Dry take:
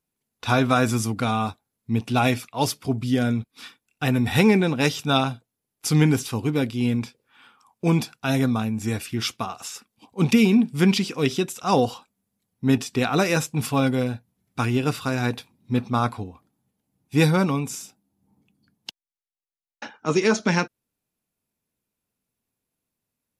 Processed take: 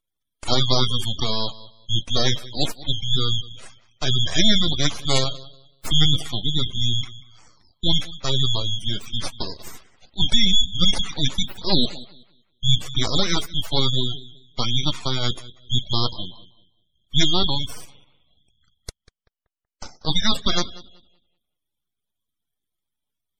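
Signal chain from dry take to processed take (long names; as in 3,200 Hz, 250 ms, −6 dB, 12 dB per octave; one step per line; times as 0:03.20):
band-splitting scrambler in four parts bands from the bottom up 4123
on a send: tape delay 190 ms, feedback 39%, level −14.5 dB, low-pass 1,700 Hz
on the sum: full-wave rectification
gate on every frequency bin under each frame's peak −30 dB strong
level +3.5 dB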